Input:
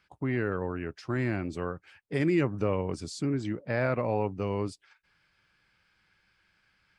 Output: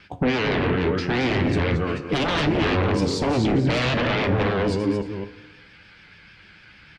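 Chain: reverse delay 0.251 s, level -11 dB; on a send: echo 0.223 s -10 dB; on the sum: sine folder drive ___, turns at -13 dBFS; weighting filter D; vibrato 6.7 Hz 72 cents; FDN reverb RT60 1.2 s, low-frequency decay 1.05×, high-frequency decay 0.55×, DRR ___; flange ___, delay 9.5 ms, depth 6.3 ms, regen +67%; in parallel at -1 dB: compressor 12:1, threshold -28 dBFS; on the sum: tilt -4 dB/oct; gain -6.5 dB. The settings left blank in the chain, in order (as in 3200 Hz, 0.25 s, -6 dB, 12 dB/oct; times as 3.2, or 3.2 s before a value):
17 dB, 13 dB, 0.68 Hz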